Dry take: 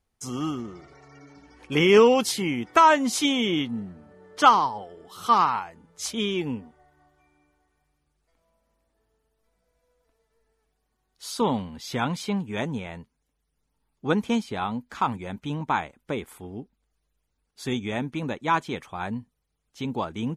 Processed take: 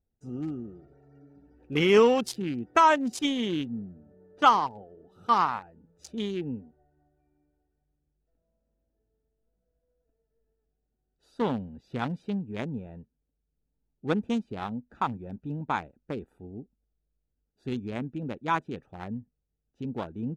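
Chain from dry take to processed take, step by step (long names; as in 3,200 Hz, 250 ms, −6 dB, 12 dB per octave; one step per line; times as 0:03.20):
adaptive Wiener filter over 41 samples
level −3 dB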